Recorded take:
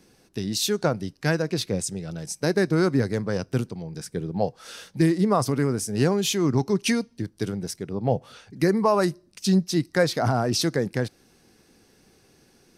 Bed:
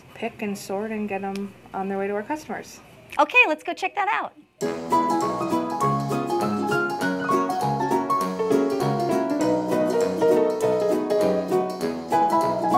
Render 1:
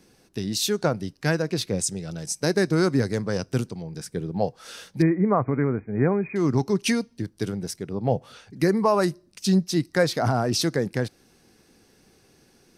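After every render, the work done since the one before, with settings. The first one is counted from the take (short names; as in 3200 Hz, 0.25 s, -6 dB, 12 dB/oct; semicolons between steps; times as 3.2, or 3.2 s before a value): 1.78–3.81 bell 6900 Hz +4.5 dB 1.5 oct; 5.02–6.36 brick-wall FIR low-pass 2500 Hz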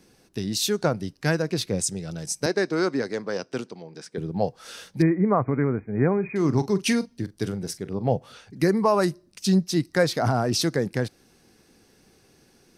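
2.46–4.18 BPF 300–5500 Hz; 6.13–8.07 doubler 42 ms -14 dB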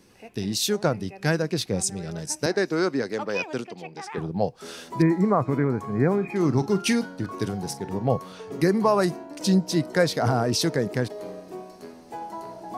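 add bed -16 dB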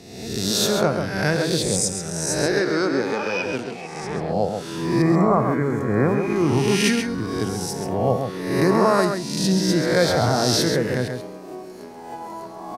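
spectral swells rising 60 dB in 1.06 s; outdoor echo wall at 23 m, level -6 dB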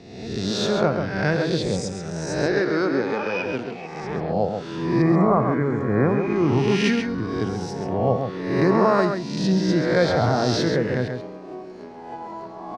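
air absorption 160 m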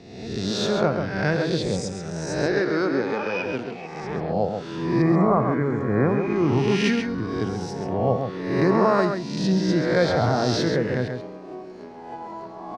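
gain -1 dB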